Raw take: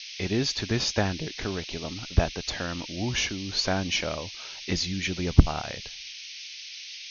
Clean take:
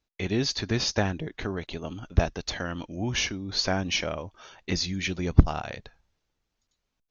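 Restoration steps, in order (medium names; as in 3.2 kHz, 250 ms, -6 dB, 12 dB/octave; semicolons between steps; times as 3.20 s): noise print and reduce 30 dB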